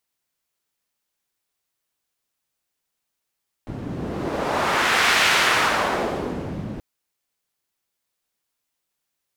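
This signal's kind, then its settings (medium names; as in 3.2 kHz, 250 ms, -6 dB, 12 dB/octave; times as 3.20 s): wind-like swept noise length 3.13 s, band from 170 Hz, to 2.1 kHz, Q 1, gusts 1, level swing 13 dB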